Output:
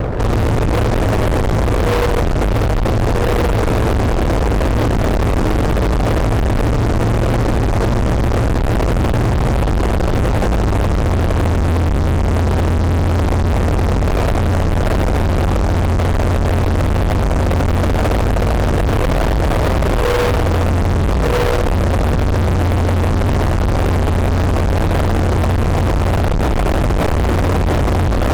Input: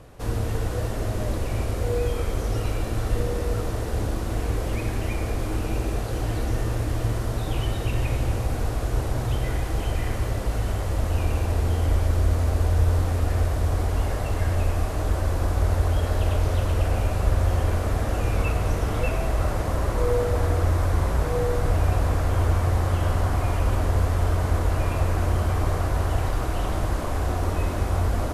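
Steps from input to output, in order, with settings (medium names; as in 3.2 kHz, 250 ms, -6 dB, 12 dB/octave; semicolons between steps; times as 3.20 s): inverse Chebyshev low-pass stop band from 2.4 kHz, stop band 60 dB; peak limiter -20.5 dBFS, peak gain reduction 11 dB; fuzz box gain 48 dB, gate -53 dBFS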